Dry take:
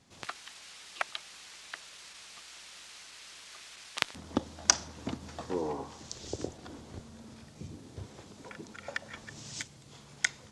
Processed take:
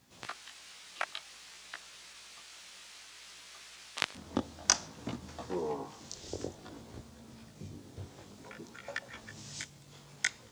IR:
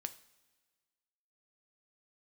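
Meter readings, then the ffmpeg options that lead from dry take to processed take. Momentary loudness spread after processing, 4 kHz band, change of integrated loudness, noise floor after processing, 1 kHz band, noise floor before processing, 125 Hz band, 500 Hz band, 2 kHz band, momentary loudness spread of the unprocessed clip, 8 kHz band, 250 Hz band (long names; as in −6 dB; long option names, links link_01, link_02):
15 LU, −2.0 dB, −2.0 dB, −56 dBFS, −2.0 dB, −54 dBFS, −2.0 dB, −1.5 dB, −2.0 dB, 15 LU, −2.0 dB, −2.0 dB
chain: -af "acrusher=bits=10:mix=0:aa=0.000001,flanger=delay=16:depth=5.6:speed=0.56,volume=1dB"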